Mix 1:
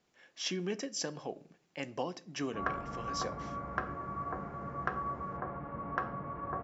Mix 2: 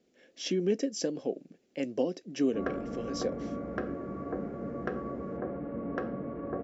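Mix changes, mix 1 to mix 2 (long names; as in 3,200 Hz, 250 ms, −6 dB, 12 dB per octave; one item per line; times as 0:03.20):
speech: send off
master: add octave-band graphic EQ 125/250/500/1,000 Hz −4/+11/+10/−12 dB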